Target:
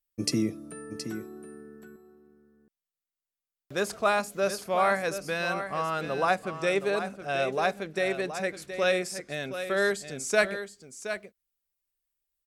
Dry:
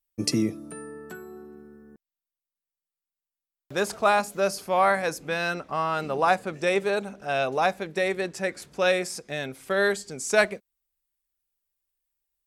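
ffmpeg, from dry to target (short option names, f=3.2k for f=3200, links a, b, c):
-af "equalizer=f=880:t=o:w=0.27:g=-6.5,aecho=1:1:721:0.316,volume=-2.5dB"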